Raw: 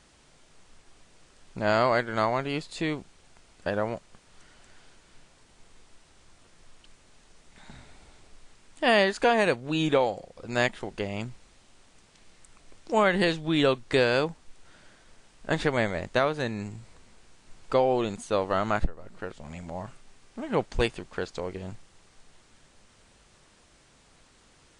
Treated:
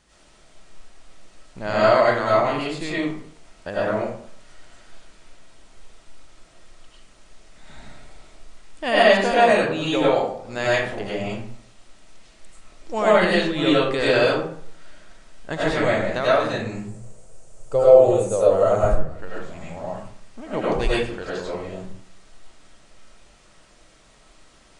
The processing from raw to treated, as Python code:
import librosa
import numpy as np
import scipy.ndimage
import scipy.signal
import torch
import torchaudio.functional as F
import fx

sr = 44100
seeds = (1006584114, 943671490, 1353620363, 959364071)

y = fx.graphic_eq_10(x, sr, hz=(125, 250, 500, 1000, 2000, 4000, 8000), db=(9, -10, 10, -5, -8, -10, 9), at=(16.77, 18.87))
y = fx.rev_freeverb(y, sr, rt60_s=0.61, hf_ratio=0.6, predelay_ms=60, drr_db=-8.0)
y = y * 10.0 ** (-3.0 / 20.0)